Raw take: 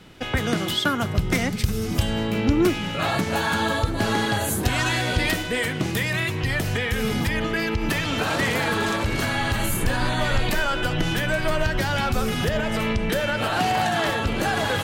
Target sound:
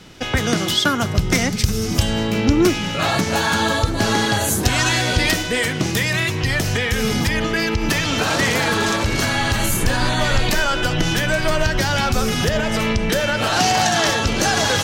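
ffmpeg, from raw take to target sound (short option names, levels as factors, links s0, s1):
-af "asetnsamples=n=441:p=0,asendcmd='13.47 equalizer g 15',equalizer=f=5800:t=o:w=0.82:g=8,volume=1.58"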